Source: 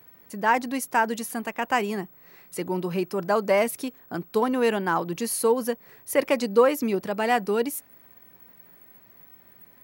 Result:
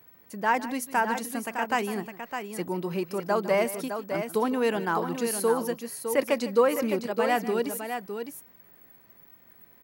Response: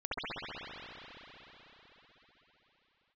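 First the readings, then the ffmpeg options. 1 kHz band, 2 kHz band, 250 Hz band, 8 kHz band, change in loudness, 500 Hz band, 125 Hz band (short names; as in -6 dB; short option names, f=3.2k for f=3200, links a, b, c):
-2.0 dB, -2.0 dB, -2.0 dB, -2.0 dB, -2.5 dB, -2.0 dB, -2.5 dB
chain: -af "aecho=1:1:153|609:0.168|0.422,volume=-3dB"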